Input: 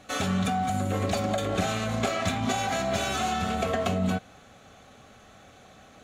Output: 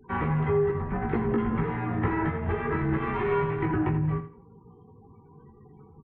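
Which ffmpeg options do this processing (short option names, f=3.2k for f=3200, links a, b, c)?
-filter_complex "[0:a]asettb=1/sr,asplit=3[a][b][c];[a]atrim=end=3.014[d];[b]atrim=start=3.01:end=3.66,asetpts=PTS-STARTPTS,afade=t=in:d=0.004:c=qsin,afade=t=out:st=0.646:d=0.004:c=qsin,aemphasis=mode=production:type=75kf[e];[c]atrim=start=3.656[f];[d][e]acrossfade=d=0.004:c1=hsin:c2=qsin[g];[g][f]acrossfade=d=0.004:c1=qsin:c2=hsin,afftfilt=real='re*gte(hypot(re,im),0.00562)':imag='im*gte(hypot(re,im),0.00562)':win_size=1024:overlap=0.75,asubboost=boost=9:cutoff=130,alimiter=limit=-13.5dB:level=0:latency=1:release=379,flanger=delay=15.5:depth=2.1:speed=0.34,aecho=1:1:83|166|249:0.266|0.0612|0.0141,highpass=f=180:t=q:w=0.5412,highpass=f=180:t=q:w=1.307,lowpass=f=2.3k:t=q:w=0.5176,lowpass=f=2.3k:t=q:w=0.7071,lowpass=f=2.3k:t=q:w=1.932,afreqshift=-340,volume=5.5dB"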